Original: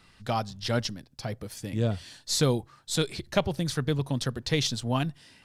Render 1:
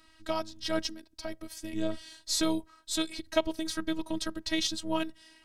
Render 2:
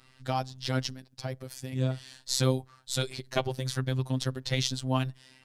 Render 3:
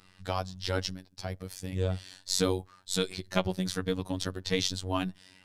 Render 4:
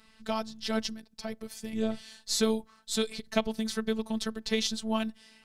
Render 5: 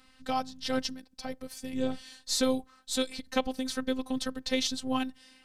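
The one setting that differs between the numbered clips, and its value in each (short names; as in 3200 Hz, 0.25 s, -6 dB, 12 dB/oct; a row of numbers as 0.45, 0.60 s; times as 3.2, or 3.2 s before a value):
robotiser, frequency: 320, 130, 93, 220, 260 Hz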